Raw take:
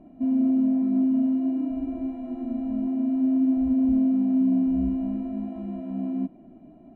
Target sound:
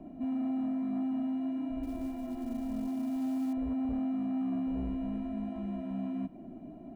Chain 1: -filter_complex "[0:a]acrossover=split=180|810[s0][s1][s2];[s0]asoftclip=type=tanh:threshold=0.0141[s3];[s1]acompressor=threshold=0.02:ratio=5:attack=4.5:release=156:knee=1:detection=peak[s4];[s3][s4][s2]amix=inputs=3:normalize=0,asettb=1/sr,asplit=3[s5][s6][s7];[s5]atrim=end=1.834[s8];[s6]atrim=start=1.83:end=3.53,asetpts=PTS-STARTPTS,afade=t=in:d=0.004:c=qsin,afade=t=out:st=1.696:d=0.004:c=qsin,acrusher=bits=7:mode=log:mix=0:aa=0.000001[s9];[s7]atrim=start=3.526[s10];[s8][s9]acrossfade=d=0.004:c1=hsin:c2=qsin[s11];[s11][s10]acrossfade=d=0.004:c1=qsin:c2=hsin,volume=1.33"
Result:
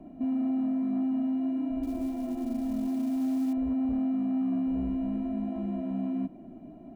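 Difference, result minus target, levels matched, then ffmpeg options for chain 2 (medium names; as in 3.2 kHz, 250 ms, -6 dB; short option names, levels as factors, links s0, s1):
compression: peak gain reduction -8 dB
-filter_complex "[0:a]acrossover=split=180|810[s0][s1][s2];[s0]asoftclip=type=tanh:threshold=0.0141[s3];[s1]acompressor=threshold=0.00631:ratio=5:attack=4.5:release=156:knee=1:detection=peak[s4];[s3][s4][s2]amix=inputs=3:normalize=0,asettb=1/sr,asplit=3[s5][s6][s7];[s5]atrim=end=1.834[s8];[s6]atrim=start=1.83:end=3.53,asetpts=PTS-STARTPTS,afade=t=in:d=0.004:c=qsin,afade=t=out:st=1.696:d=0.004:c=qsin,acrusher=bits=7:mode=log:mix=0:aa=0.000001[s9];[s7]atrim=start=3.526[s10];[s8][s9]acrossfade=d=0.004:c1=hsin:c2=qsin[s11];[s11][s10]acrossfade=d=0.004:c1=qsin:c2=hsin,volume=1.33"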